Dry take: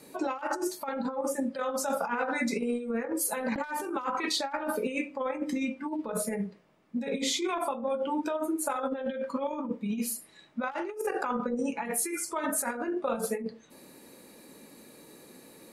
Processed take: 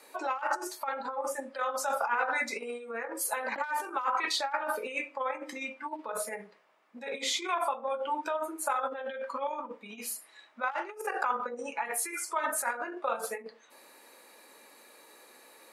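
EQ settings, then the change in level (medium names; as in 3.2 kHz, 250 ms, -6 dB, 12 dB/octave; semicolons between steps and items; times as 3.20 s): high-pass 920 Hz 12 dB/octave; treble shelf 2.3 kHz -10 dB; +7.0 dB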